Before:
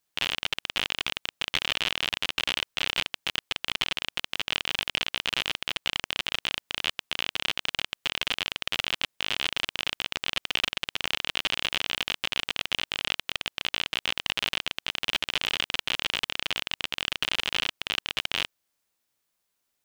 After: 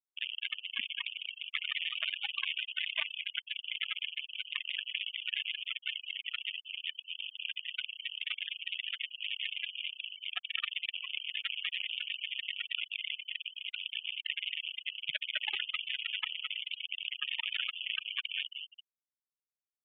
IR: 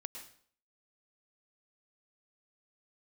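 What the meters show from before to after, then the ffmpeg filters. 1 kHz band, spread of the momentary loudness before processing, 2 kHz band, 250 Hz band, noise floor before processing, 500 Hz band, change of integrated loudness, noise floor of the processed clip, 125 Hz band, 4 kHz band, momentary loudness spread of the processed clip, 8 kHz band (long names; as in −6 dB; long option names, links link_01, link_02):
−17.5 dB, 3 LU, −7.0 dB, below −30 dB, −79 dBFS, below −20 dB, −7.0 dB, below −85 dBFS, below −30 dB, −7.0 dB, 5 LU, below −40 dB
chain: -filter_complex "[0:a]asplit=2[link_01][link_02];[link_02]aecho=0:1:210|388.5|540.2|669.2|778.8:0.631|0.398|0.251|0.158|0.1[link_03];[link_01][link_03]amix=inputs=2:normalize=0,afftfilt=real='re*gte(hypot(re,im),0.0891)':imag='im*gte(hypot(re,im),0.0891)':win_size=1024:overlap=0.75,acrossover=split=190 2300:gain=0.0708 1 0.251[link_04][link_05][link_06];[link_04][link_05][link_06]amix=inputs=3:normalize=0,aresample=8000,aresample=44100,adynamicequalizer=threshold=0.00224:dfrequency=840:dqfactor=0.75:tfrequency=840:tqfactor=0.75:attack=5:release=100:ratio=0.375:range=2:mode=boostabove:tftype=bell"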